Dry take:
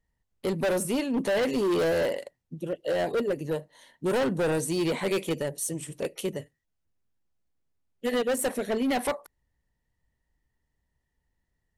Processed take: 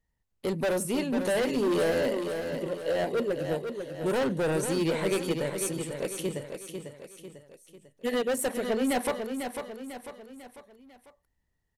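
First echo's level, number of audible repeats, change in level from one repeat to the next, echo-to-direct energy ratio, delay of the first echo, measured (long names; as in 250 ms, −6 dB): −7.0 dB, 4, −6.5 dB, −6.0 dB, 497 ms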